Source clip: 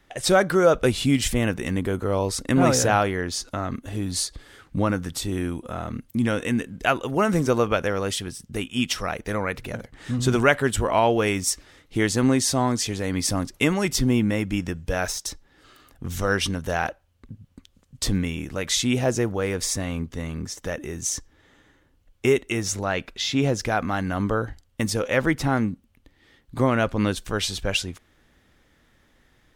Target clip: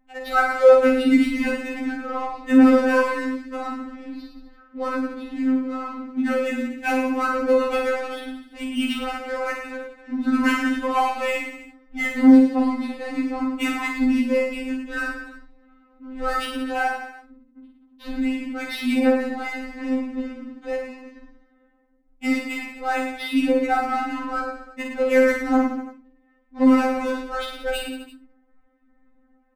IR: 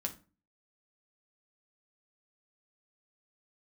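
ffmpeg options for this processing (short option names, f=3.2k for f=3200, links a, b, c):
-filter_complex "[0:a]lowpass=f=3.6k:w=0.5412,lowpass=f=3.6k:w=1.3066,adynamicsmooth=sensitivity=4.5:basefreq=920,flanger=delay=0.3:depth=7:regen=81:speed=0.25:shape=triangular,aecho=1:1:50|107.5|173.6|249.7|337.1:0.631|0.398|0.251|0.158|0.1[a];[1:a]atrim=start_sample=2205[b];[a][b]afir=irnorm=-1:irlink=0,afftfilt=real='re*3.46*eq(mod(b,12),0)':imag='im*3.46*eq(mod(b,12),0)':win_size=2048:overlap=0.75,volume=4.5dB"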